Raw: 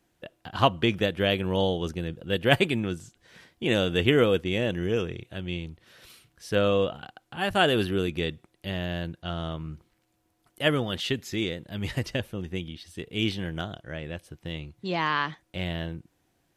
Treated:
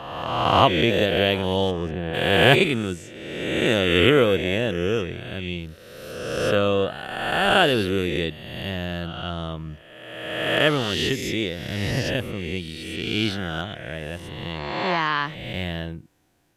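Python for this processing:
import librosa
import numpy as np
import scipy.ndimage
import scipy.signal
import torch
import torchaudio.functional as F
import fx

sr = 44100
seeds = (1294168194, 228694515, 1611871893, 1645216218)

y = fx.spec_swells(x, sr, rise_s=1.55)
y = fx.lowpass(y, sr, hz=1100.0, slope=6, at=(1.7, 2.13), fade=0.02)
y = y * librosa.db_to_amplitude(1.5)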